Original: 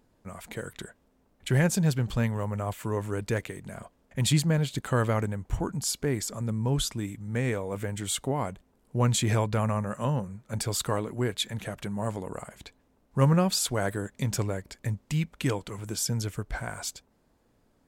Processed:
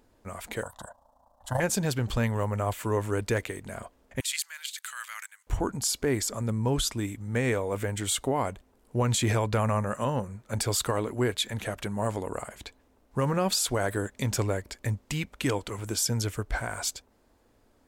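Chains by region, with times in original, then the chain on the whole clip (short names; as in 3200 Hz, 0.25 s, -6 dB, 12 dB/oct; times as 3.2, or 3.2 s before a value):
0.63–1.6 band shelf 760 Hz +14.5 dB 1.3 oct + AM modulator 28 Hz, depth 50% + fixed phaser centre 960 Hz, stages 4
4.2–5.47 high shelf 5400 Hz +8 dB + level quantiser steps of 10 dB + inverse Chebyshev high-pass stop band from 250 Hz, stop band 80 dB
whole clip: bell 160 Hz -10 dB 0.67 oct; limiter -21 dBFS; gain +4 dB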